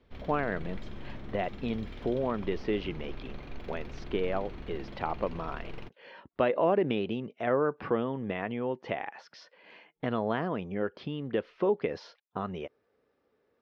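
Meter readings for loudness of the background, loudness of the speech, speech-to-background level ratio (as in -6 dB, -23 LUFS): -45.5 LUFS, -32.5 LUFS, 13.0 dB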